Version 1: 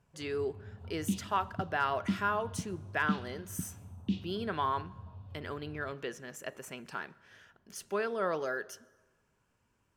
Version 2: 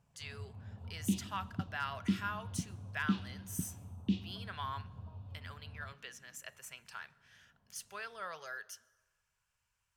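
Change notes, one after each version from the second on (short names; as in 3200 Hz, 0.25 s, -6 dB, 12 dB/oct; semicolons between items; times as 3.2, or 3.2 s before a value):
speech: add passive tone stack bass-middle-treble 10-0-10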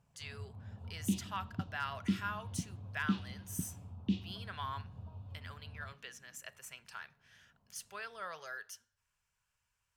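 reverb: off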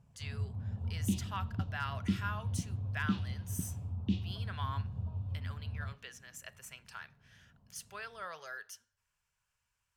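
first sound: add low shelf 320 Hz +11 dB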